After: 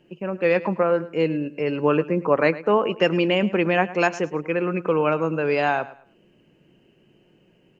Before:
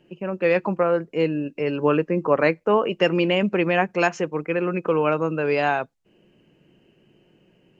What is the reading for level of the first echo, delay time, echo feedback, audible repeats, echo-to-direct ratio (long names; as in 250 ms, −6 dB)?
−17.0 dB, 107 ms, 27%, 2, −16.5 dB